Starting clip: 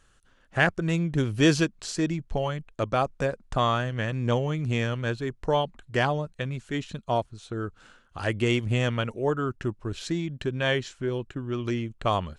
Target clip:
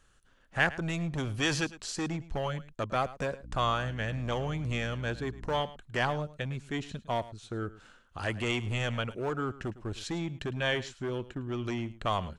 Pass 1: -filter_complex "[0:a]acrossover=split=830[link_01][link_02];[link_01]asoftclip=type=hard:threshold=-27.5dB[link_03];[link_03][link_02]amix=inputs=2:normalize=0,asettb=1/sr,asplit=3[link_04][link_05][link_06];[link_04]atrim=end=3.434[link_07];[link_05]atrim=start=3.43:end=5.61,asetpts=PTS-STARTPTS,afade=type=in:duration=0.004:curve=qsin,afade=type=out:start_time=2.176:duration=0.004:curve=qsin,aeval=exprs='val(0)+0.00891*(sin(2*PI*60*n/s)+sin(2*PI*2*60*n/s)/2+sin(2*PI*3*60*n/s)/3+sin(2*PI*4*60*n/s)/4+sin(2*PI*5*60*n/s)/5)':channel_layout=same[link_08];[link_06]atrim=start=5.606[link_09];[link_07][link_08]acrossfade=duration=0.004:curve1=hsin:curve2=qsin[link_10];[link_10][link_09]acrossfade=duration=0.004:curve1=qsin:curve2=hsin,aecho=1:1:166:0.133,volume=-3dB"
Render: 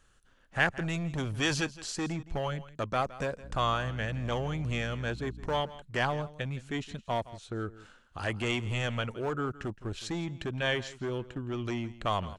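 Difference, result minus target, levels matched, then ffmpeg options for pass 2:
echo 59 ms late
-filter_complex "[0:a]acrossover=split=830[link_01][link_02];[link_01]asoftclip=type=hard:threshold=-27.5dB[link_03];[link_03][link_02]amix=inputs=2:normalize=0,asettb=1/sr,asplit=3[link_04][link_05][link_06];[link_04]atrim=end=3.434[link_07];[link_05]atrim=start=3.43:end=5.61,asetpts=PTS-STARTPTS,afade=type=in:duration=0.004:curve=qsin,afade=type=out:start_time=2.176:duration=0.004:curve=qsin,aeval=exprs='val(0)+0.00891*(sin(2*PI*60*n/s)+sin(2*PI*2*60*n/s)/2+sin(2*PI*3*60*n/s)/3+sin(2*PI*4*60*n/s)/4+sin(2*PI*5*60*n/s)/5)':channel_layout=same[link_08];[link_06]atrim=start=5.606[link_09];[link_07][link_08]acrossfade=duration=0.004:curve1=hsin:curve2=qsin[link_10];[link_10][link_09]acrossfade=duration=0.004:curve1=qsin:curve2=hsin,aecho=1:1:107:0.133,volume=-3dB"

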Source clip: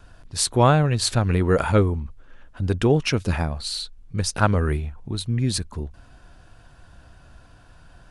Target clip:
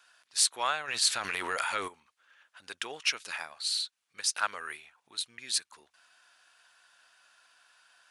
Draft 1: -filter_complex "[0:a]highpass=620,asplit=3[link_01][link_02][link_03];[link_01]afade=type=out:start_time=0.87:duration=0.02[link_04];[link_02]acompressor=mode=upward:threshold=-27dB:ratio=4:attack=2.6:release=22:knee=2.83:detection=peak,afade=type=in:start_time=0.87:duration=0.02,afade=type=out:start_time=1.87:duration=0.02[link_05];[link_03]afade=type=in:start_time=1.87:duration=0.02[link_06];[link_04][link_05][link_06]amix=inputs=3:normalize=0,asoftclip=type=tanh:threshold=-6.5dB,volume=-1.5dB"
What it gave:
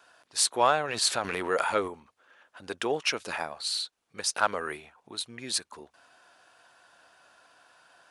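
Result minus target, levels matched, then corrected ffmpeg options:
500 Hz band +10.5 dB
-filter_complex "[0:a]highpass=1600,asplit=3[link_01][link_02][link_03];[link_01]afade=type=out:start_time=0.87:duration=0.02[link_04];[link_02]acompressor=mode=upward:threshold=-27dB:ratio=4:attack=2.6:release=22:knee=2.83:detection=peak,afade=type=in:start_time=0.87:duration=0.02,afade=type=out:start_time=1.87:duration=0.02[link_05];[link_03]afade=type=in:start_time=1.87:duration=0.02[link_06];[link_04][link_05][link_06]amix=inputs=3:normalize=0,asoftclip=type=tanh:threshold=-6.5dB,volume=-1.5dB"

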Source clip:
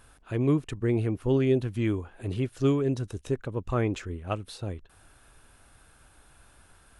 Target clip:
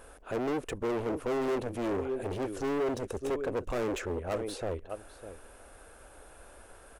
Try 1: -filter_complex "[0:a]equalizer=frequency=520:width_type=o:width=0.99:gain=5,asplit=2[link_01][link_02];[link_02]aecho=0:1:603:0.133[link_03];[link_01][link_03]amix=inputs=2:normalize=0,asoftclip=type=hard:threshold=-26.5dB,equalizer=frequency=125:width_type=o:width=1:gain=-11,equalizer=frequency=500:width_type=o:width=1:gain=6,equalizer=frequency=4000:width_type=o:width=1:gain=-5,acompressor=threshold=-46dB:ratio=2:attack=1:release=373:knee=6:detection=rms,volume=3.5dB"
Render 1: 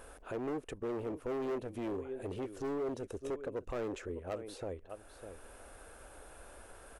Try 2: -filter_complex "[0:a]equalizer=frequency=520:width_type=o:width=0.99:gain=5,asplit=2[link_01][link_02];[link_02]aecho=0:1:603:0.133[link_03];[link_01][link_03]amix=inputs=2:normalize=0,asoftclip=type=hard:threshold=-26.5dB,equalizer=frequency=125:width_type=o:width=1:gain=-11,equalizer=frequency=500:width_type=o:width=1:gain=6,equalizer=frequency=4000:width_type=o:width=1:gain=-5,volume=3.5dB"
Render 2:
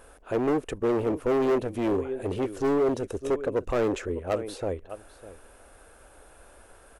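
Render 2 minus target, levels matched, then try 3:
hard clipping: distortion −4 dB
-filter_complex "[0:a]equalizer=frequency=520:width_type=o:width=0.99:gain=5,asplit=2[link_01][link_02];[link_02]aecho=0:1:603:0.133[link_03];[link_01][link_03]amix=inputs=2:normalize=0,asoftclip=type=hard:threshold=-34dB,equalizer=frequency=125:width_type=o:width=1:gain=-11,equalizer=frequency=500:width_type=o:width=1:gain=6,equalizer=frequency=4000:width_type=o:width=1:gain=-5,volume=3.5dB"

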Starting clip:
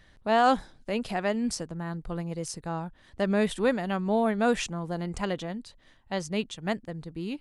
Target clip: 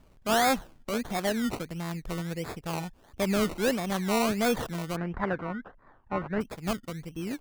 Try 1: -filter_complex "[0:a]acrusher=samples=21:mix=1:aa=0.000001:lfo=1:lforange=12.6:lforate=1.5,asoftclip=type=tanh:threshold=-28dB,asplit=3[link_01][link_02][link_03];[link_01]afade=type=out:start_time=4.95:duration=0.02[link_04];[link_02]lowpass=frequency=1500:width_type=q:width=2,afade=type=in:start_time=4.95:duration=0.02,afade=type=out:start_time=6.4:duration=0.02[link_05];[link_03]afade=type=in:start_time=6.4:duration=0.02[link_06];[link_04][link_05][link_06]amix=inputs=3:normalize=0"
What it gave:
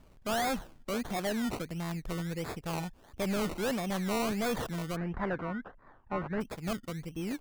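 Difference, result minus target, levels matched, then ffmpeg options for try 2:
soft clipping: distortion +11 dB
-filter_complex "[0:a]acrusher=samples=21:mix=1:aa=0.000001:lfo=1:lforange=12.6:lforate=1.5,asoftclip=type=tanh:threshold=-16.5dB,asplit=3[link_01][link_02][link_03];[link_01]afade=type=out:start_time=4.95:duration=0.02[link_04];[link_02]lowpass=frequency=1500:width_type=q:width=2,afade=type=in:start_time=4.95:duration=0.02,afade=type=out:start_time=6.4:duration=0.02[link_05];[link_03]afade=type=in:start_time=6.4:duration=0.02[link_06];[link_04][link_05][link_06]amix=inputs=3:normalize=0"

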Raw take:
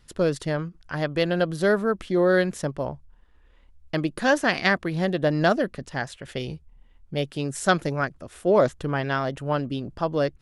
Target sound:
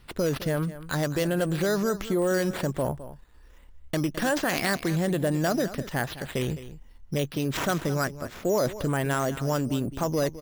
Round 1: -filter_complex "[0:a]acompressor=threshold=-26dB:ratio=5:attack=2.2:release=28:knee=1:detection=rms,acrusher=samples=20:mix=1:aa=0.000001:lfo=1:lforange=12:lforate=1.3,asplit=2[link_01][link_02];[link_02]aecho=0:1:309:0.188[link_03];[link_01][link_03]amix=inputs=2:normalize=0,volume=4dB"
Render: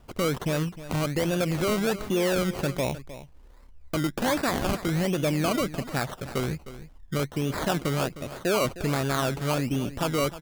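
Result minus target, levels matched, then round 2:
echo 98 ms late; sample-and-hold swept by an LFO: distortion +9 dB
-filter_complex "[0:a]acompressor=threshold=-26dB:ratio=5:attack=2.2:release=28:knee=1:detection=rms,acrusher=samples=6:mix=1:aa=0.000001:lfo=1:lforange=3.6:lforate=1.3,asplit=2[link_01][link_02];[link_02]aecho=0:1:211:0.188[link_03];[link_01][link_03]amix=inputs=2:normalize=0,volume=4dB"

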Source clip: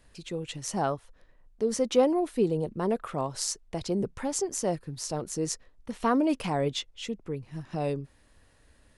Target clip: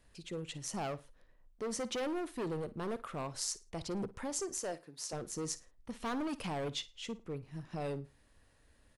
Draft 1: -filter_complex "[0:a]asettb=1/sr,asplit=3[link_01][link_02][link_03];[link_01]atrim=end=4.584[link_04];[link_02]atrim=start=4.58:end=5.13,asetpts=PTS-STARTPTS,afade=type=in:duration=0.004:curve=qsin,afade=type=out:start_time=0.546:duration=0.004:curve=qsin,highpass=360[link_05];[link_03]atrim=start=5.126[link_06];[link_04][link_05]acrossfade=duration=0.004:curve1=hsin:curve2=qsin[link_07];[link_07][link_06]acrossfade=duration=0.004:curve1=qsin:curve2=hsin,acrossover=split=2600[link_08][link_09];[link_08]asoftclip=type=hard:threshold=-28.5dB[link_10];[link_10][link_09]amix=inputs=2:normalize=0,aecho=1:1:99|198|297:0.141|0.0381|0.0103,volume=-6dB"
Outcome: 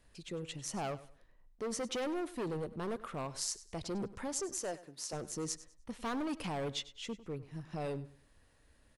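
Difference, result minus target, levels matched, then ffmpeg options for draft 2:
echo 44 ms late
-filter_complex "[0:a]asettb=1/sr,asplit=3[link_01][link_02][link_03];[link_01]atrim=end=4.584[link_04];[link_02]atrim=start=4.58:end=5.13,asetpts=PTS-STARTPTS,afade=type=in:duration=0.004:curve=qsin,afade=type=out:start_time=0.546:duration=0.004:curve=qsin,highpass=360[link_05];[link_03]atrim=start=5.126[link_06];[link_04][link_05]acrossfade=duration=0.004:curve1=hsin:curve2=qsin[link_07];[link_07][link_06]acrossfade=duration=0.004:curve1=qsin:curve2=hsin,acrossover=split=2600[link_08][link_09];[link_08]asoftclip=type=hard:threshold=-28.5dB[link_10];[link_10][link_09]amix=inputs=2:normalize=0,aecho=1:1:55|110|165:0.141|0.0381|0.0103,volume=-6dB"

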